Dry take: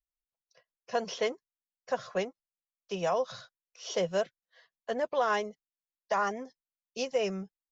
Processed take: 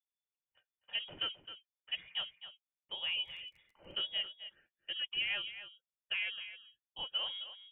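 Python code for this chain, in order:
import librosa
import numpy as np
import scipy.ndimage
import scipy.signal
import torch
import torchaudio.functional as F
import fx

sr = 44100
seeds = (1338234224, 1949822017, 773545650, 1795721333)

y = x + 10.0 ** (-12.0 / 20.0) * np.pad(x, (int(263 * sr / 1000.0), 0))[:len(x)]
y = fx.freq_invert(y, sr, carrier_hz=3500)
y = fx.dmg_crackle(y, sr, seeds[0], per_s=fx.line((2.97, 46.0), (3.91, 14.0)), level_db=-45.0, at=(2.97, 3.91), fade=0.02)
y = F.gain(torch.from_numpy(y), -8.0).numpy()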